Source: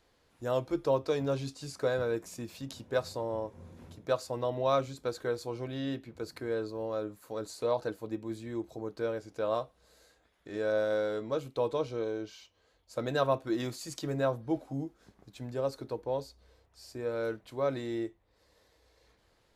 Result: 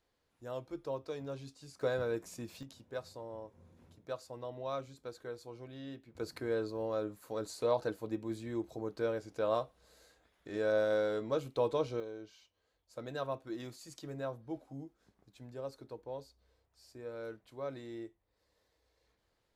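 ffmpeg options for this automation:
ffmpeg -i in.wav -af "asetnsamples=nb_out_samples=441:pad=0,asendcmd='1.81 volume volume -3.5dB;2.63 volume volume -11dB;6.15 volume volume -1dB;12 volume volume -10dB',volume=-11dB" out.wav

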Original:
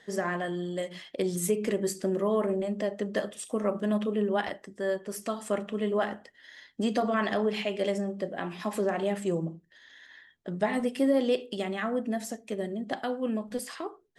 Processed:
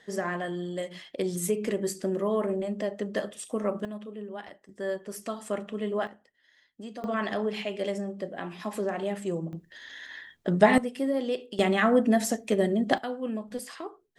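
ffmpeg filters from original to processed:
ffmpeg -i in.wav -af "asetnsamples=nb_out_samples=441:pad=0,asendcmd='3.85 volume volume -11.5dB;4.69 volume volume -2dB;6.07 volume volume -13dB;7.04 volume volume -2dB;9.53 volume volume 9dB;10.78 volume volume -3.5dB;11.59 volume volume 8.5dB;12.98 volume volume -2dB',volume=-0.5dB" out.wav

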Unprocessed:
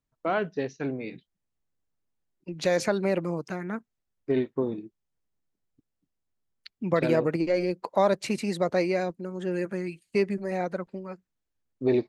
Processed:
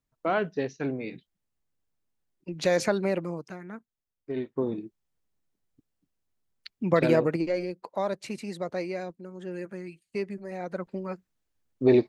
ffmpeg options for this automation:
ffmpeg -i in.wav -af "volume=21.5dB,afade=type=out:start_time=2.88:duration=0.71:silence=0.375837,afade=type=in:start_time=4.33:duration=0.48:silence=0.316228,afade=type=out:start_time=7.1:duration=0.63:silence=0.354813,afade=type=in:start_time=10.61:duration=0.44:silence=0.281838" out.wav

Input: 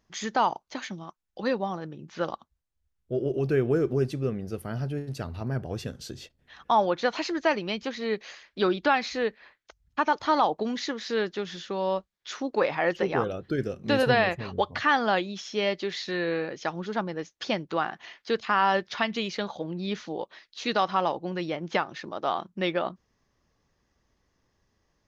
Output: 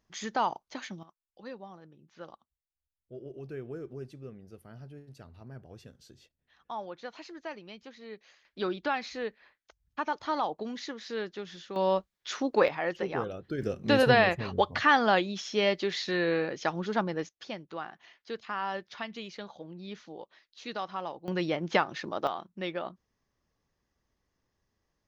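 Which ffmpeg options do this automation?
ffmpeg -i in.wav -af "asetnsamples=nb_out_samples=441:pad=0,asendcmd='1.03 volume volume -16dB;8.45 volume volume -7.5dB;11.76 volume volume 1dB;12.68 volume volume -6dB;13.62 volume volume 0.5dB;17.29 volume volume -11dB;21.28 volume volume 1dB;22.27 volume volume -7.5dB',volume=-4.5dB" out.wav

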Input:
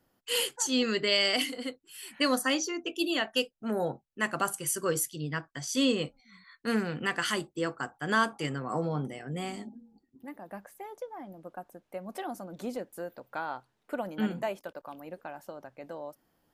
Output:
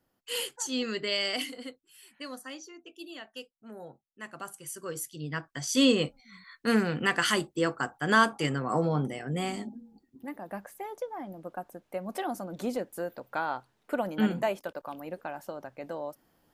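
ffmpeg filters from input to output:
ffmpeg -i in.wav -af "volume=14.5dB,afade=type=out:start_time=1.52:duration=0.71:silence=0.298538,afade=type=in:start_time=4.06:duration=0.89:silence=0.473151,afade=type=in:start_time=4.95:duration=0.88:silence=0.251189" out.wav

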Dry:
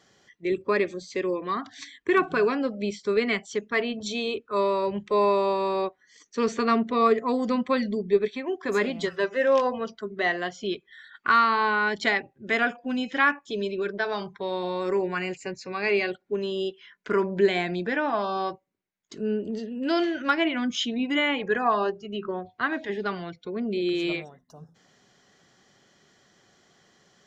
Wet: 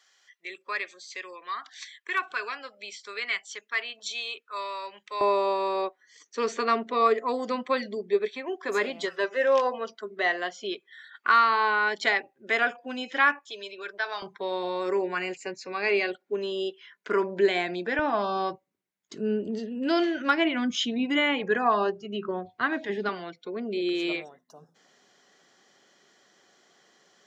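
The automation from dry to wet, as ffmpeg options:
ffmpeg -i in.wav -af "asetnsamples=nb_out_samples=441:pad=0,asendcmd='5.21 highpass f 400;13.44 highpass f 870;14.22 highpass f 300;17.99 highpass f 110;23.09 highpass f 290',highpass=1300" out.wav

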